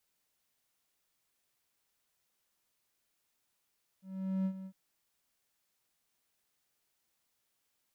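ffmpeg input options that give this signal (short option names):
-f lavfi -i "aevalsrc='0.0473*(1-4*abs(mod(190*t+0.25,1)-0.5))':d=0.706:s=44100,afade=t=in:d=0.434,afade=t=out:st=0.434:d=0.073:silence=0.224,afade=t=out:st=0.64:d=0.066"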